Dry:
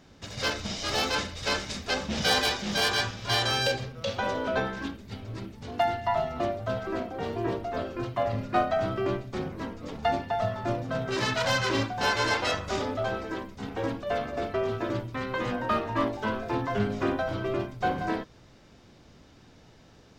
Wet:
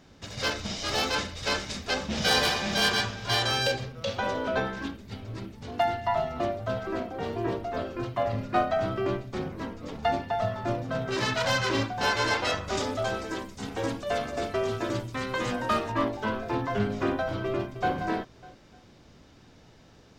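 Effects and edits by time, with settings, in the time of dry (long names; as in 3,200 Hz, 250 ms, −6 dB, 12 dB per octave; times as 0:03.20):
0:02.15–0:02.82: thrown reverb, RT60 1.4 s, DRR 3 dB
0:12.77–0:15.92: parametric band 8,200 Hz +12.5 dB 1.6 octaves
0:17.45–0:17.94: delay throw 300 ms, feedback 30%, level −12 dB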